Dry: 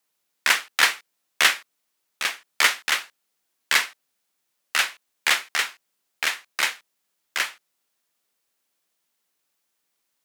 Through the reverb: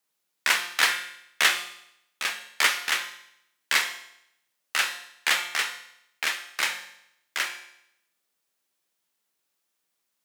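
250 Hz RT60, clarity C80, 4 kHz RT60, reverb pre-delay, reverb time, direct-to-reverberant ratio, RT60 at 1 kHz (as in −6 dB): 0.75 s, 12.0 dB, 0.75 s, 6 ms, 0.75 s, 5.5 dB, 0.75 s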